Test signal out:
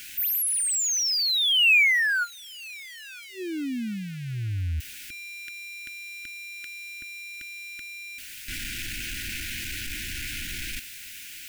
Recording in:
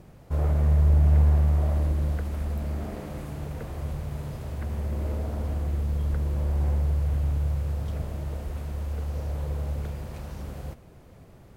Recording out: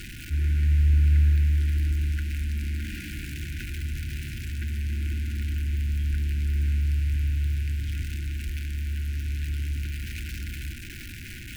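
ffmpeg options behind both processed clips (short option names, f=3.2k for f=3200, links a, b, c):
-af "aeval=exprs='val(0)+0.5*0.0237*sgn(val(0))':c=same,equalizer=f=160:t=o:w=0.67:g=-10,equalizer=f=400:t=o:w=0.67:g=-8,equalizer=f=2.5k:t=o:w=0.67:g=9,afftfilt=real='re*(1-between(b*sr/4096,380,1400))':imag='im*(1-between(b*sr/4096,380,1400))':win_size=4096:overlap=0.75"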